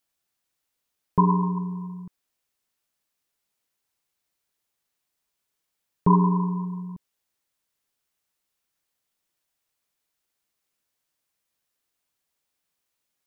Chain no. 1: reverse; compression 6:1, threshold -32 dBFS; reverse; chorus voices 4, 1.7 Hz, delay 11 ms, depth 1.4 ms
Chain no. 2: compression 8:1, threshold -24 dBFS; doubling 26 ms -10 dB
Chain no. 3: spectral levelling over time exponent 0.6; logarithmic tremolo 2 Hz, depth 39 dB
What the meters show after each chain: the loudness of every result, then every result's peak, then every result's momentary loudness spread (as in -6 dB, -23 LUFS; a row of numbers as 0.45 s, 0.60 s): -35.0 LUFS, -31.5 LUFS, -32.0 LUFS; -23.5 dBFS, -12.0 dBFS, -13.0 dBFS; 12 LU, 13 LU, 14 LU